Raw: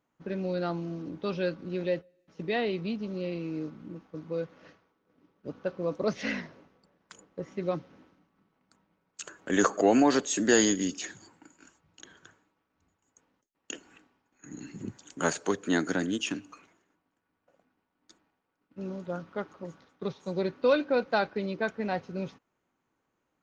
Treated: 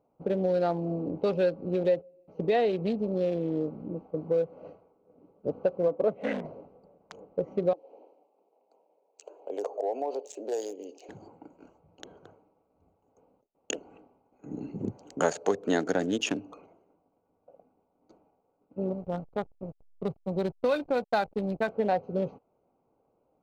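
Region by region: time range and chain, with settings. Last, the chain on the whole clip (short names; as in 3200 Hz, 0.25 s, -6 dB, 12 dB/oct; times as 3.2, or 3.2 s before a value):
5.88–6.45 HPF 190 Hz 6 dB/oct + air absorption 440 m + notch 4500 Hz, Q 5.2
7.73–11.09 HPF 390 Hz 24 dB/oct + band shelf 1500 Hz -11 dB 1 oct + compressor 2:1, threshold -51 dBFS
18.93–21.68 bell 500 Hz -10.5 dB 1.1 oct + backlash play -41 dBFS
whole clip: Wiener smoothing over 25 samples; band shelf 590 Hz +8.5 dB 1.2 oct; compressor 2.5:1, threshold -31 dBFS; gain +5.5 dB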